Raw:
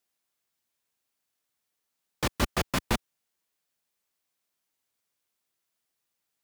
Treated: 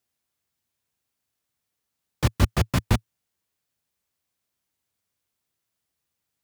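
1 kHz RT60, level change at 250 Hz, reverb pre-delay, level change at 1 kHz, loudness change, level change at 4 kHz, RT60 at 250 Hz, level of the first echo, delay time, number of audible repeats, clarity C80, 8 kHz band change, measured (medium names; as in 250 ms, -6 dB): no reverb, +5.0 dB, no reverb, +0.5 dB, +5.5 dB, 0.0 dB, no reverb, no echo, no echo, no echo, no reverb, 0.0 dB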